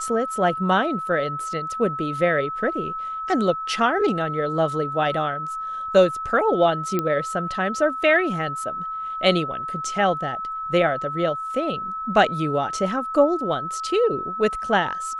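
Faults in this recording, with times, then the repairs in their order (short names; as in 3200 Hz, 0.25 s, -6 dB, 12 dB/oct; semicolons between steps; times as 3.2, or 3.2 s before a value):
tone 1300 Hz -27 dBFS
6.99 pop -10 dBFS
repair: de-click; notch 1300 Hz, Q 30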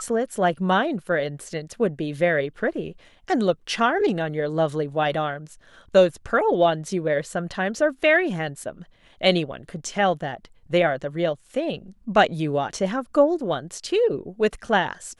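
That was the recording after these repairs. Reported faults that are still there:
6.99 pop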